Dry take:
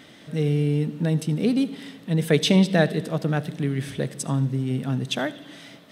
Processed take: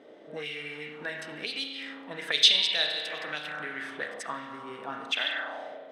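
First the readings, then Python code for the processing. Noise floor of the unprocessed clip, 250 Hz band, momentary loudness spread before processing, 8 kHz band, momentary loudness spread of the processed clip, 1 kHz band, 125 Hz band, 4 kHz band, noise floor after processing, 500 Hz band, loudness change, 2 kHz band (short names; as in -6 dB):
-48 dBFS, -22.5 dB, 12 LU, -4.0 dB, 19 LU, -3.5 dB, -31.5 dB, +7.0 dB, -48 dBFS, -13.0 dB, -4.5 dB, +1.5 dB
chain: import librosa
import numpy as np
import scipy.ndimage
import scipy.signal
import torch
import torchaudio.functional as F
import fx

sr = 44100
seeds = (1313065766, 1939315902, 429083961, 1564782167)

y = fx.bass_treble(x, sr, bass_db=-10, treble_db=5)
y = fx.rev_spring(y, sr, rt60_s=1.6, pass_ms=(33,), chirp_ms=20, drr_db=0.5)
y = fx.auto_wah(y, sr, base_hz=440.0, top_hz=3700.0, q=2.4, full_db=-19.5, direction='up')
y = y * 10.0 ** (5.5 / 20.0)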